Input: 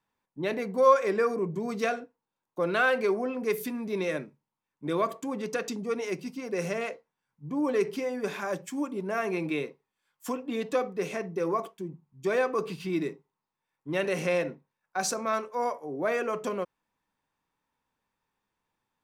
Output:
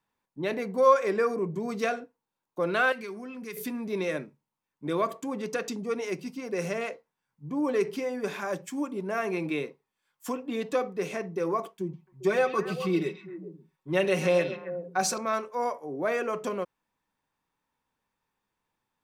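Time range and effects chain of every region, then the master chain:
0:02.92–0:03.57: parametric band 600 Hz −14 dB 1.8 octaves + downward compressor 2 to 1, threshold −37 dBFS
0:11.80–0:15.18: comb filter 5.4 ms, depth 66% + echo through a band-pass that steps 133 ms, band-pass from 3,400 Hz, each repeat −1.4 octaves, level −5 dB
whole clip: no processing

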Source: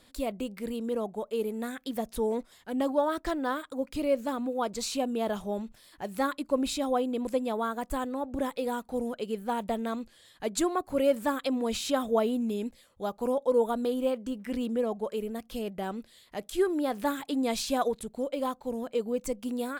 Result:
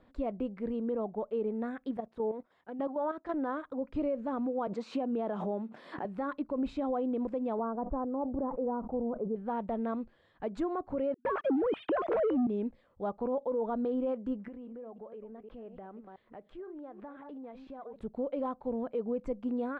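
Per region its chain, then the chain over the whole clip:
0:01.97–0:03.34: high-pass filter 280 Hz 6 dB per octave + output level in coarse steps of 10 dB
0:04.67–0:06.05: high-pass filter 190 Hz 24 dB per octave + background raised ahead of every attack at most 48 dB per second
0:07.59–0:09.36: low-pass filter 1,100 Hz 24 dB per octave + level that may fall only so fast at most 81 dB per second
0:11.14–0:12.47: three sine waves on the formant tracks + noise gate with hold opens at −37 dBFS, closes at −41 dBFS + leveller curve on the samples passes 3
0:14.48–0:17.96: delay that plays each chunk backwards 168 ms, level −12 dB + bass and treble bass −5 dB, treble −13 dB + downward compressor 4 to 1, threshold −45 dBFS
whole clip: low-pass filter 1,300 Hz 12 dB per octave; brickwall limiter −25 dBFS

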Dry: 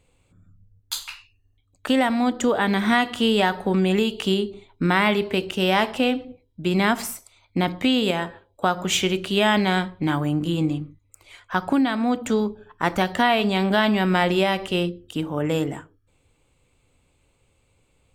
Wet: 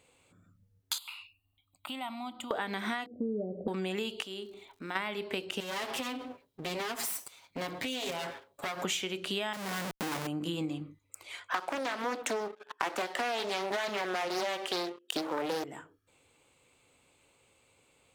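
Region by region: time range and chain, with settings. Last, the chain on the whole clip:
0:00.98–0:02.51: high-shelf EQ 6,200 Hz +5 dB + downward compressor 2 to 1, threshold −44 dBFS + phaser with its sweep stopped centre 1,700 Hz, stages 6
0:03.06–0:03.68: Butterworth low-pass 610 Hz 72 dB per octave + parametric band 190 Hz +5 dB 1.8 octaves
0:04.22–0:04.95: parametric band 140 Hz −5.5 dB 1.7 octaves + downward compressor 2 to 1, threshold −48 dBFS + surface crackle 240 per second −57 dBFS
0:05.60–0:08.84: lower of the sound and its delayed copy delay 7.3 ms + high-shelf EQ 8,600 Hz +5.5 dB + downward compressor 4 to 1, threshold −31 dBFS
0:09.53–0:10.27: mu-law and A-law mismatch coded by A + low-pass filter 1,800 Hz 24 dB per octave + comparator with hysteresis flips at −40 dBFS
0:11.54–0:15.64: high-pass filter 310 Hz 24 dB per octave + leveller curve on the samples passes 3 + highs frequency-modulated by the lows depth 0.79 ms
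whole clip: high-pass filter 430 Hz 6 dB per octave; downward compressor 12 to 1, threshold −33 dBFS; level +2.5 dB

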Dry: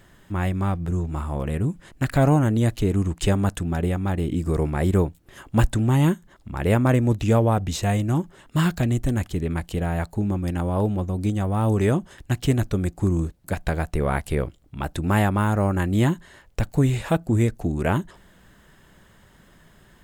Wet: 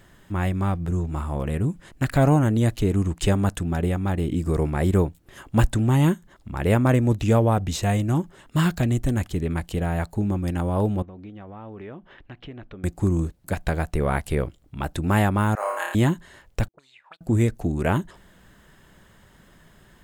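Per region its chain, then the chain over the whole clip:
0:11.02–0:12.84: low-pass filter 3,200 Hz 24 dB per octave + parametric band 76 Hz −10 dB 2.3 octaves + downward compressor 2.5 to 1, threshold −43 dBFS
0:15.55–0:15.95: high-pass filter 680 Hz 24 dB per octave + flutter between parallel walls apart 4.9 metres, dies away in 0.74 s
0:16.68–0:17.21: power curve on the samples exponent 1.4 + envelope filter 330–4,300 Hz, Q 12, up, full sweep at −17.5 dBFS
whole clip: no processing

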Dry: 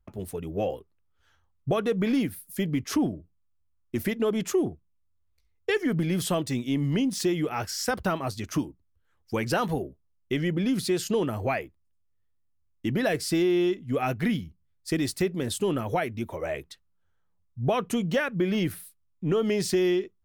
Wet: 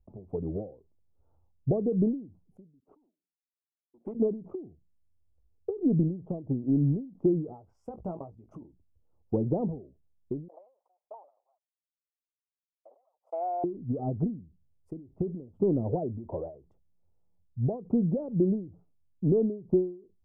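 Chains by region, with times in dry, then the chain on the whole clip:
0:02.80–0:04.15: high-pass filter 230 Hz 24 dB per octave + hard clipping −30.5 dBFS + expander for the loud parts 2.5 to 1, over −44 dBFS
0:07.73–0:08.65: high-shelf EQ 2,800 Hz +9 dB + output level in coarse steps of 17 dB + double-tracking delay 17 ms −8.5 dB
0:10.48–0:13.64: lower of the sound and its delayed copy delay 1 ms + noise gate −32 dBFS, range −41 dB + elliptic high-pass filter 550 Hz, stop band 80 dB
whole clip: inverse Chebyshev low-pass filter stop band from 1,600 Hz, stop band 40 dB; treble cut that deepens with the level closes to 460 Hz, closed at −24.5 dBFS; every ending faded ahead of time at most 130 dB per second; level +2.5 dB

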